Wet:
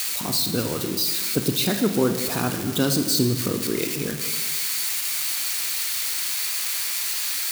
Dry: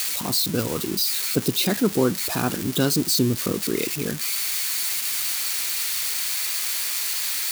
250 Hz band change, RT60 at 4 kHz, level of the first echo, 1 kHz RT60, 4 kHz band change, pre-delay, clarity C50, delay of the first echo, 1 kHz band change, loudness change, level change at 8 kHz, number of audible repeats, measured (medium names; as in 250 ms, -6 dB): 0.0 dB, 1.3 s, no echo, 1.5 s, 0.0 dB, 26 ms, 7.5 dB, no echo, -0.5 dB, 0.0 dB, -0.5 dB, no echo